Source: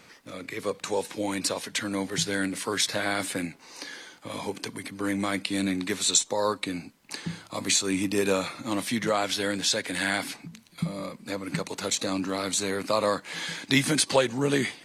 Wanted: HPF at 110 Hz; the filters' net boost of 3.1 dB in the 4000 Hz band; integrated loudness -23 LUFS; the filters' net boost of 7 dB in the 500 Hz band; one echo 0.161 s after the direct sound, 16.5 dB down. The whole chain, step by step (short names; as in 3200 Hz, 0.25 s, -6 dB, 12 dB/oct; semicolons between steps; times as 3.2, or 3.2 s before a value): HPF 110 Hz; bell 500 Hz +8 dB; bell 4000 Hz +3.5 dB; echo 0.161 s -16.5 dB; gain +1 dB